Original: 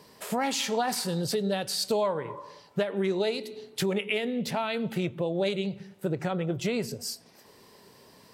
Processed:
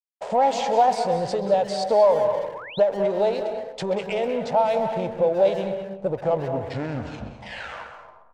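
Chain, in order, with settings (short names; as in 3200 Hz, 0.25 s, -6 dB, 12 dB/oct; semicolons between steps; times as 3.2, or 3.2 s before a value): tape stop at the end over 2.27 s; backlash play -35.5 dBFS; reverb RT60 0.70 s, pre-delay 0.179 s, DRR 8 dB; reverse; upward compressor, threshold -47 dBFS; reverse; high shelf 6500 Hz -5.5 dB; sample leveller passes 1; steep low-pass 8600 Hz 36 dB/oct; band shelf 680 Hz +14.5 dB 1.2 oct; speakerphone echo 0.13 s, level -9 dB; painted sound rise, 2.54–2.8, 820–4400 Hz -34 dBFS; gain -5 dB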